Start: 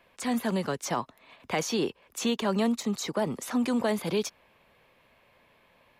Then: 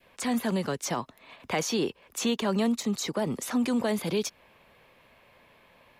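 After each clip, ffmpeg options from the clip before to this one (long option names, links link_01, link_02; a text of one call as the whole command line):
ffmpeg -i in.wav -filter_complex "[0:a]adynamicequalizer=threshold=0.00708:dfrequency=1000:dqfactor=0.74:tfrequency=1000:tqfactor=0.74:attack=5:release=100:ratio=0.375:range=2:mode=cutabove:tftype=bell,asplit=2[link_01][link_02];[link_02]alimiter=level_in=5dB:limit=-24dB:level=0:latency=1:release=126,volume=-5dB,volume=-1.5dB[link_03];[link_01][link_03]amix=inputs=2:normalize=0,volume=-1.5dB" out.wav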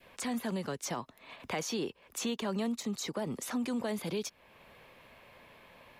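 ffmpeg -i in.wav -af "acompressor=threshold=-50dB:ratio=1.5,volume=2dB" out.wav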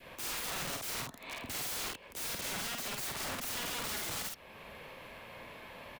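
ffmpeg -i in.wav -filter_complex "[0:a]aeval=exprs='(mod(106*val(0)+1,2)-1)/106':channel_layout=same,asplit=2[link_01][link_02];[link_02]adelay=50,volume=-2.5dB[link_03];[link_01][link_03]amix=inputs=2:normalize=0,volume=5.5dB" out.wav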